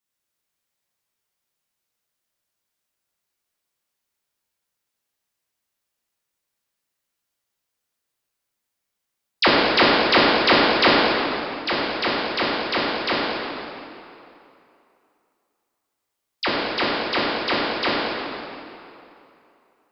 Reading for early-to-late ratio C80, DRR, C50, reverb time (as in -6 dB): -1.5 dB, -7.5 dB, -2.5 dB, 2.8 s